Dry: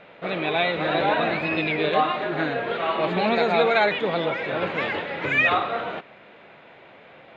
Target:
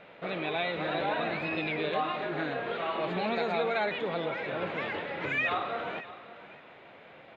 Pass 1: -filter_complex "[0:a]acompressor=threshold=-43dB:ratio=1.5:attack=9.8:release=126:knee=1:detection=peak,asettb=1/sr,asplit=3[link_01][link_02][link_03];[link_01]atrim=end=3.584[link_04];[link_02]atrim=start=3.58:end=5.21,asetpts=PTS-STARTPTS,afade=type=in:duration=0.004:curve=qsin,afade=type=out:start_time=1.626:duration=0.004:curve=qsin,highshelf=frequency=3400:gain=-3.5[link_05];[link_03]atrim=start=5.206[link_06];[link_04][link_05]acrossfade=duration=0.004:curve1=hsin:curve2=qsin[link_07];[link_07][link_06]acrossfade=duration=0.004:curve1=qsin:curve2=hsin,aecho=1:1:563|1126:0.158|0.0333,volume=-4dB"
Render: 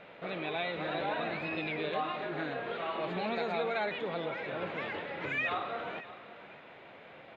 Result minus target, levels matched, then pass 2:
downward compressor: peak gain reduction +3.5 dB
-filter_complex "[0:a]acompressor=threshold=-32.5dB:ratio=1.5:attack=9.8:release=126:knee=1:detection=peak,asettb=1/sr,asplit=3[link_01][link_02][link_03];[link_01]atrim=end=3.584[link_04];[link_02]atrim=start=3.58:end=5.21,asetpts=PTS-STARTPTS,afade=type=in:duration=0.004:curve=qsin,afade=type=out:start_time=1.626:duration=0.004:curve=qsin,highshelf=frequency=3400:gain=-3.5[link_05];[link_03]atrim=start=5.206[link_06];[link_04][link_05]acrossfade=duration=0.004:curve1=hsin:curve2=qsin[link_07];[link_07][link_06]acrossfade=duration=0.004:curve1=qsin:curve2=hsin,aecho=1:1:563|1126:0.158|0.0333,volume=-4dB"

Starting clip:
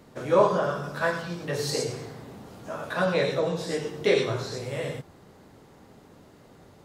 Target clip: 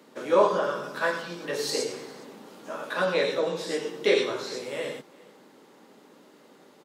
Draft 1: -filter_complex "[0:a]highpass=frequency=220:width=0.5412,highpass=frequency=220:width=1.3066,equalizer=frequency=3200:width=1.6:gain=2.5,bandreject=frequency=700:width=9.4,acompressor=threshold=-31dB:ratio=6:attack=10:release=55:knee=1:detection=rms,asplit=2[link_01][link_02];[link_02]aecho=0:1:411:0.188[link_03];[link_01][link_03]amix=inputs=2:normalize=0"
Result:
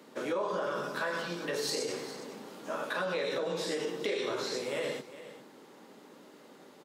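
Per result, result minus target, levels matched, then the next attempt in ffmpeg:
downward compressor: peak gain reduction +15 dB; echo-to-direct +9.5 dB
-filter_complex "[0:a]highpass=frequency=220:width=0.5412,highpass=frequency=220:width=1.3066,equalizer=frequency=3200:width=1.6:gain=2.5,bandreject=frequency=700:width=9.4,asplit=2[link_01][link_02];[link_02]aecho=0:1:411:0.188[link_03];[link_01][link_03]amix=inputs=2:normalize=0"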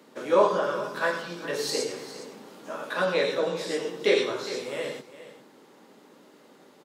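echo-to-direct +9.5 dB
-filter_complex "[0:a]highpass=frequency=220:width=0.5412,highpass=frequency=220:width=1.3066,equalizer=frequency=3200:width=1.6:gain=2.5,bandreject=frequency=700:width=9.4,asplit=2[link_01][link_02];[link_02]aecho=0:1:411:0.0631[link_03];[link_01][link_03]amix=inputs=2:normalize=0"

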